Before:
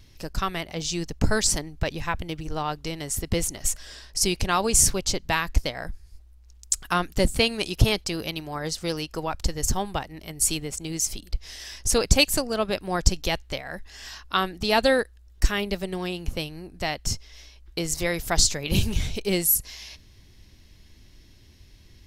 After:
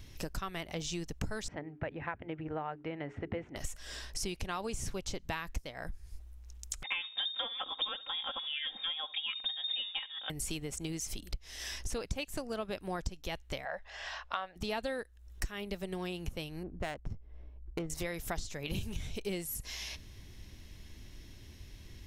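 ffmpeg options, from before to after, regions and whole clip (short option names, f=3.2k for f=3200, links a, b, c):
-filter_complex "[0:a]asettb=1/sr,asplit=3[a][b][c];[a]atrim=end=1.484[d];[b]atrim=start=1.48:end=3.56,asetpts=PTS-STARTPTS,afade=t=in:d=0.004:c=qsin,afade=t=out:st=2.076:d=0.004:c=qsin,highpass=140,equalizer=f=180:t=q:w=4:g=-8,equalizer=f=380:t=q:w=4:g=-4,equalizer=f=1.1k:t=q:w=4:g=-6,lowpass=f=2.1k:w=0.5412,lowpass=f=2.1k:w=1.3066,bandreject=f=60:t=h:w=6,bandreject=f=120:t=h:w=6,bandreject=f=180:t=h:w=6,bandreject=f=240:t=h:w=6,bandreject=f=300:t=h:w=6,bandreject=f=360:t=h:w=6,bandreject=f=420:t=h:w=6[e];[c]atrim=start=3.556[f];[d][e]acrossfade=d=0.004:c1=hsin:c2=qsin[g];[g][f]acrossfade=d=0.004:c1=qsin:c2=hsin,asettb=1/sr,asplit=3[h][i][j];[h]atrim=end=6.834[k];[i]atrim=start=6.83:end=10.3,asetpts=PTS-STARTPTS,afade=t=in:d=0.004:c=qsin,afade=t=out:st=3.466:d=0.004:c=qsin,aecho=1:1:3.8:0.82,atrim=end_sample=153027,aecho=1:1:69|138:0.0794|0.0199,atrim=end_sample=153027,lowpass=f=3.1k:t=q:w=0.5098,lowpass=f=3.1k:t=q:w=0.6013,lowpass=f=3.1k:t=q:w=0.9,lowpass=f=3.1k:t=q:w=2.563,afreqshift=-3700[l];[j]atrim=start=10.296[m];[k][l]acrossfade=d=0.004:c1=hsin:c2=qsin[n];[n][m]acrossfade=d=0.004:c1=qsin:c2=hsin,asettb=1/sr,asplit=3[o][p][q];[o]atrim=end=13.654[r];[p]atrim=start=13.65:end=14.56,asetpts=PTS-STARTPTS,afade=t=in:d=0.004:c=qsin,afade=t=out:st=0.906:d=0.004:c=qsin,lowpass=3.5k,lowshelf=f=440:t=q:w=3:g=-10.5[s];[q]atrim=start=14.556[t];[r][s]acrossfade=d=0.004:c1=hsin:c2=qsin[u];[u][t]acrossfade=d=0.004:c1=qsin:c2=hsin,asettb=1/sr,asplit=3[v][w][x];[v]atrim=end=16.634[y];[w]atrim=start=16.63:end=17.9,asetpts=PTS-STARTPTS,afade=t=in:d=0.004:c=qsin,afade=t=out:st=1.266:d=0.004:c=qsin,highshelf=f=6.6k:g=-6,adynamicsmooth=sensitivity=2:basefreq=560[z];[x]atrim=start=17.896[aa];[y][z]acrossfade=d=0.004:c1=hsin:c2=qsin[ab];[ab][aa]acrossfade=d=0.004:c1=qsin:c2=hsin,acrossover=split=4200[ac][ad];[ad]acompressor=threshold=-31dB:ratio=4:attack=1:release=60[ae];[ac][ae]amix=inputs=2:normalize=0,equalizer=f=4.6k:t=o:w=0.33:g=-5.5,acompressor=threshold=-37dB:ratio=5,volume=1.5dB"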